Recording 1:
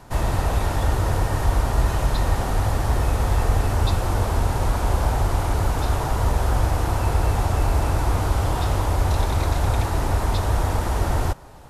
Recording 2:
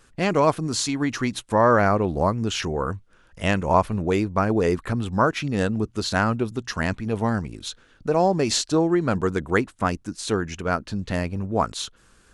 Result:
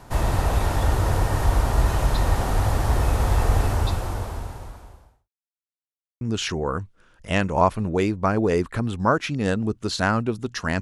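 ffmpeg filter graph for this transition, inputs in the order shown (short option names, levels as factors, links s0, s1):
-filter_complex "[0:a]apad=whole_dur=10.81,atrim=end=10.81,asplit=2[s0][s1];[s0]atrim=end=5.3,asetpts=PTS-STARTPTS,afade=t=out:st=3.63:d=1.67:c=qua[s2];[s1]atrim=start=5.3:end=6.21,asetpts=PTS-STARTPTS,volume=0[s3];[1:a]atrim=start=2.34:end=6.94,asetpts=PTS-STARTPTS,afade=t=in:d=0.004:c=hsin[s4];[s2][s3][s4]concat=n=3:v=0:a=1"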